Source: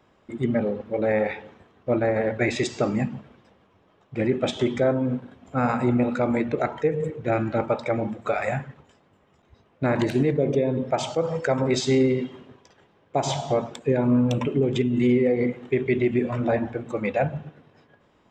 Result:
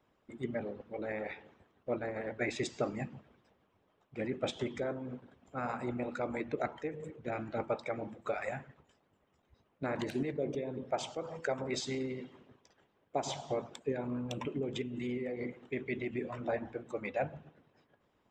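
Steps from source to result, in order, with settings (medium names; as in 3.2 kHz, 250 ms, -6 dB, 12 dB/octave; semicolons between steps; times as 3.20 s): de-hum 167.6 Hz, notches 19; harmonic-percussive split harmonic -10 dB; trim -8.5 dB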